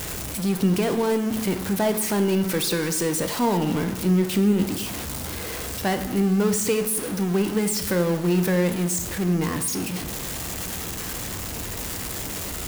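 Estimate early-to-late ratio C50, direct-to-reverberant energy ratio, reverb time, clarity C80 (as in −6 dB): 10.5 dB, 7.0 dB, 0.95 s, 13.0 dB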